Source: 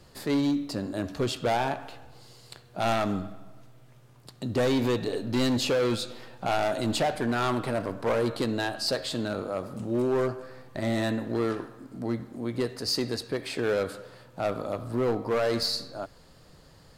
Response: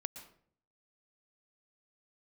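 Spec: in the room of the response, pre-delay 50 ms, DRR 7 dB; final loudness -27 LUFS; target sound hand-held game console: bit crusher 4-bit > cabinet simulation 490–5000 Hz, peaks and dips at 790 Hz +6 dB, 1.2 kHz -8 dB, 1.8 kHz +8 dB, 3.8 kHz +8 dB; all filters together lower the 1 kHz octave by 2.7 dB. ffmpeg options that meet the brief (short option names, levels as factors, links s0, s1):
-filter_complex "[0:a]equalizer=f=1000:t=o:g=-8,asplit=2[s0][s1];[1:a]atrim=start_sample=2205,adelay=50[s2];[s1][s2]afir=irnorm=-1:irlink=0,volume=0.531[s3];[s0][s3]amix=inputs=2:normalize=0,acrusher=bits=3:mix=0:aa=0.000001,highpass=490,equalizer=f=790:t=q:w=4:g=6,equalizer=f=1200:t=q:w=4:g=-8,equalizer=f=1800:t=q:w=4:g=8,equalizer=f=3800:t=q:w=4:g=8,lowpass=f=5000:w=0.5412,lowpass=f=5000:w=1.3066,volume=1.12"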